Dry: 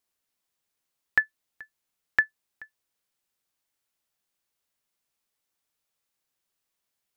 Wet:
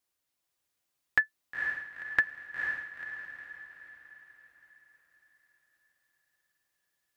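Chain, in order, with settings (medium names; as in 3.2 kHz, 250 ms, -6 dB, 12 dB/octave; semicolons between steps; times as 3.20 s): comb of notches 220 Hz; echo that smears into a reverb 485 ms, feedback 48%, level -4 dB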